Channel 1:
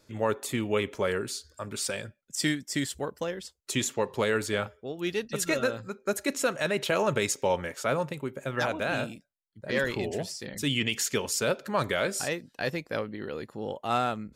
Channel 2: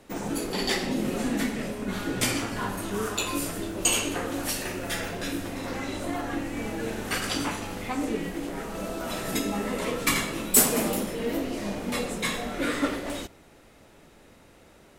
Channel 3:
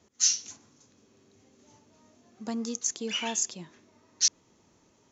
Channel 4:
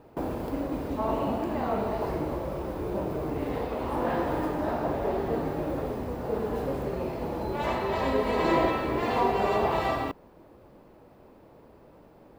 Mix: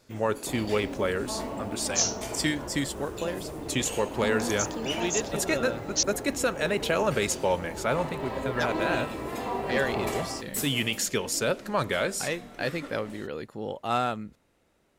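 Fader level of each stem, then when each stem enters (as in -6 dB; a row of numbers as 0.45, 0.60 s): +0.5, -14.5, -2.0, -7.0 dB; 0.00, 0.00, 1.75, 0.30 s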